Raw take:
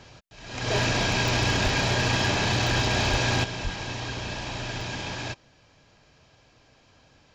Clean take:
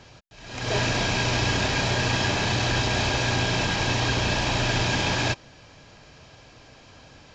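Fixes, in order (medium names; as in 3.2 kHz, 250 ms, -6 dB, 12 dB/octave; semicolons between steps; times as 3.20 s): clip repair -16 dBFS; de-plosive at 1.63/3.10/3.63 s; interpolate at 1.28/2.67/4.81 s, 1.1 ms; gain correction +9 dB, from 3.44 s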